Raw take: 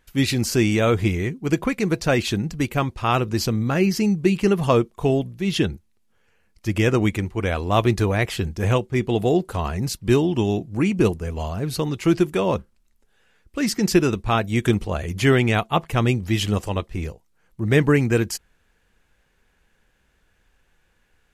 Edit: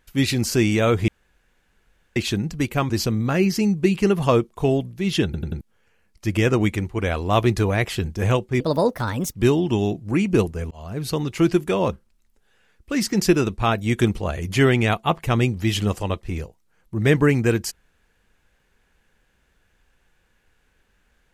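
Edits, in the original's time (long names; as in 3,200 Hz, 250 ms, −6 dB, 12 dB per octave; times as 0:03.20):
0:01.08–0:02.16: fill with room tone
0:02.90–0:03.31: remove
0:05.66: stutter in place 0.09 s, 4 plays
0:09.01–0:10.00: play speed 134%
0:11.37–0:11.86: fade in equal-power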